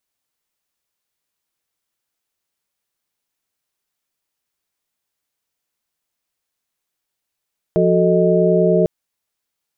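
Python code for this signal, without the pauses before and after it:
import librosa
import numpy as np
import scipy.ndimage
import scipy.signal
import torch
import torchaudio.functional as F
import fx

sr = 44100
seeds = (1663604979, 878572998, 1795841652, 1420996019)

y = fx.chord(sr, length_s=1.1, notes=(53, 66, 69, 75), wave='sine', level_db=-17.0)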